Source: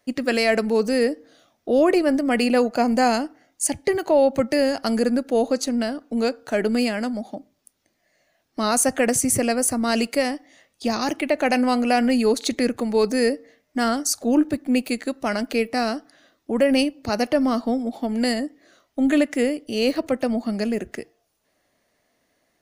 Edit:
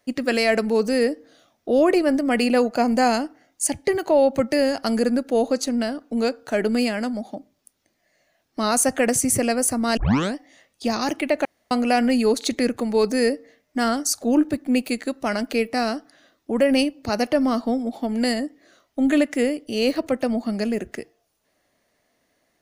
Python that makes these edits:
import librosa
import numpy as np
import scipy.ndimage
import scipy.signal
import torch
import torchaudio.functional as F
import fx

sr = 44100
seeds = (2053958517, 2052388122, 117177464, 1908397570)

y = fx.edit(x, sr, fx.tape_start(start_s=9.97, length_s=0.38),
    fx.room_tone_fill(start_s=11.45, length_s=0.26), tone=tone)